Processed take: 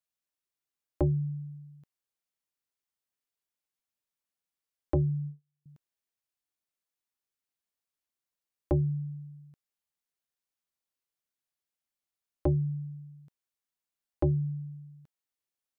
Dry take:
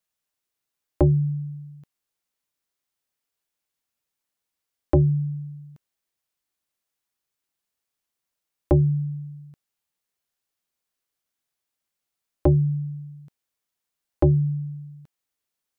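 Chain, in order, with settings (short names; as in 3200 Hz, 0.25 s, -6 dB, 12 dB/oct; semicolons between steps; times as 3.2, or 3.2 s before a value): 4.95–5.66 gate -28 dBFS, range -40 dB; gain -8.5 dB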